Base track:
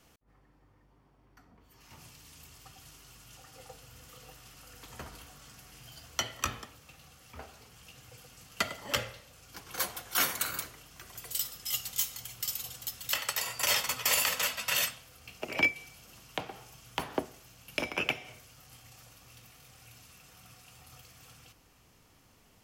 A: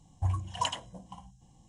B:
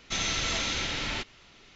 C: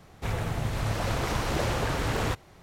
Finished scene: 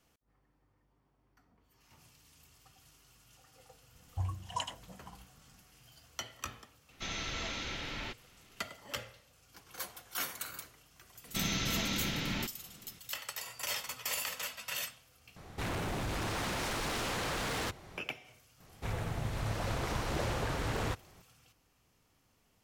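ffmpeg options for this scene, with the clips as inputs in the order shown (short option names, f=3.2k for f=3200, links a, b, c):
-filter_complex "[2:a]asplit=2[a][b];[3:a]asplit=2[c][d];[0:a]volume=-9dB[e];[a]highshelf=f=5.1k:g=-9.5[f];[b]equalizer=f=180:t=o:w=1.3:g=13[g];[c]aeval=exprs='0.178*sin(PI/2*5.62*val(0)/0.178)':c=same[h];[e]asplit=2[i][j];[i]atrim=end=15.364[k];[h]atrim=end=2.62,asetpts=PTS-STARTPTS,volume=-17.5dB[l];[j]atrim=start=17.976[m];[1:a]atrim=end=1.68,asetpts=PTS-STARTPTS,volume=-6dB,afade=t=in:d=0.004:c=hsin,afade=t=out:st=1.676:d=0.004:c=hsin,adelay=3950[n];[f]atrim=end=1.75,asetpts=PTS-STARTPTS,volume=-7dB,afade=t=in:d=0.004:c=hsin,afade=t=out:st=1.746:d=0.004:c=hsin,adelay=304290S[o];[g]atrim=end=1.75,asetpts=PTS-STARTPTS,volume=-6dB,afade=t=in:d=0.004:c=hsin,afade=t=out:st=1.746:d=0.004:c=hsin,adelay=11240[p];[d]atrim=end=2.62,asetpts=PTS-STARTPTS,volume=-6.5dB,afade=t=in:d=0.004:c=hsin,afade=t=out:st=2.616:d=0.004:c=hsin,adelay=820260S[q];[k][l]acrossfade=d=0.004:c1=hsin:c2=hsin[r];[r][m]acrossfade=d=0.004:c1=hsin:c2=hsin[s];[s][n][o][p][q]amix=inputs=5:normalize=0"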